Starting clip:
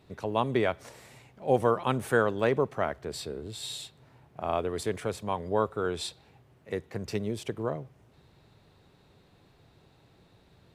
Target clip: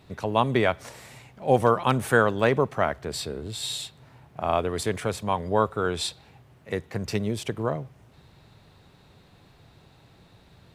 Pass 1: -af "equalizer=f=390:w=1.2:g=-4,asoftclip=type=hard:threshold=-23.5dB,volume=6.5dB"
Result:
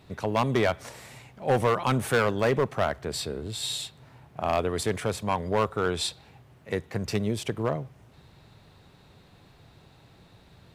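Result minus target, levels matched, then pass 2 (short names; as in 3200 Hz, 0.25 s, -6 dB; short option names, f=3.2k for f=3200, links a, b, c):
hard clip: distortion +29 dB
-af "equalizer=f=390:w=1.2:g=-4,asoftclip=type=hard:threshold=-13.5dB,volume=6.5dB"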